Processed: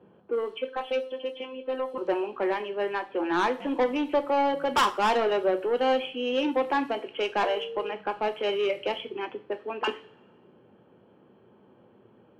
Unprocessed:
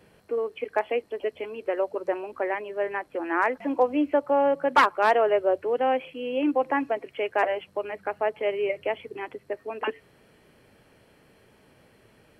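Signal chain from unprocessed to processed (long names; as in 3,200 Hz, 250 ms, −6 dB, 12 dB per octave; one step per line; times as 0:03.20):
high-pass filter 170 Hz 12 dB per octave
low-pass that shuts in the quiet parts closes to 910 Hz, open at −23 dBFS
thirty-one-band graphic EQ 630 Hz −7 dB, 2,000 Hz −10 dB, 3,150 Hz +10 dB, 5,000 Hz −4 dB
0:00.57–0:01.98: phases set to zero 259 Hz
0:07.44–0:07.91: steady tone 460 Hz −34 dBFS
soft clipping −22.5 dBFS, distortion −11 dB
coupled-rooms reverb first 0.35 s, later 1.7 s, from −25 dB, DRR 7 dB
level +3.5 dB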